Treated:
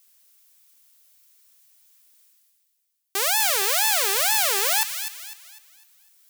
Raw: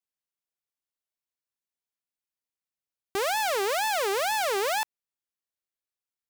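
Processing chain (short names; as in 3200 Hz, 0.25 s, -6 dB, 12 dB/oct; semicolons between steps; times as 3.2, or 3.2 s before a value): tilt +4 dB/oct; reverse; upward compressor, threshold -41 dBFS; reverse; thin delay 0.251 s, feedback 38%, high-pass 1700 Hz, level -8 dB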